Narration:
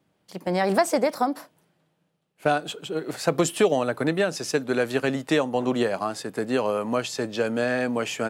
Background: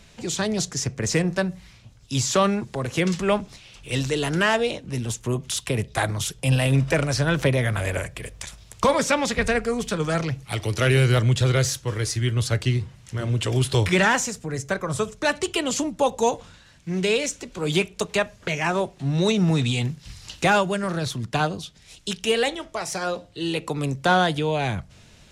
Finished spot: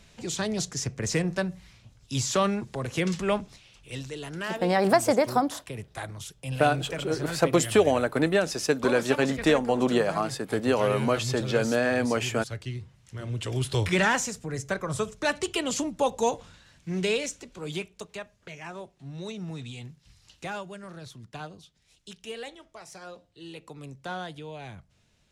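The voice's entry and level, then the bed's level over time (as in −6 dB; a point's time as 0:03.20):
4.15 s, 0.0 dB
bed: 0:03.39 −4.5 dB
0:04.08 −13 dB
0:12.68 −13 dB
0:14.01 −4 dB
0:17.06 −4 dB
0:18.23 −16.5 dB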